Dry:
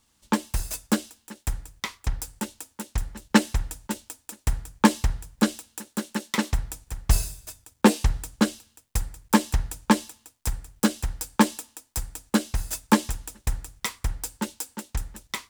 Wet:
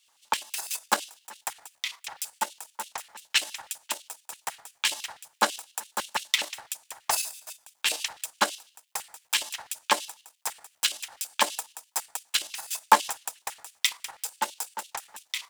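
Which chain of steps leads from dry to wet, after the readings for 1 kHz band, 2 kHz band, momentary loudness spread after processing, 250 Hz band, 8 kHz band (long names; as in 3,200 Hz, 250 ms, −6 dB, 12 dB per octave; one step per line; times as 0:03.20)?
+2.0 dB, +1.0 dB, 11 LU, −23.5 dB, +1.5 dB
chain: output level in coarse steps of 9 dB
auto-filter high-pass square 6 Hz 800–2,800 Hz
level +5 dB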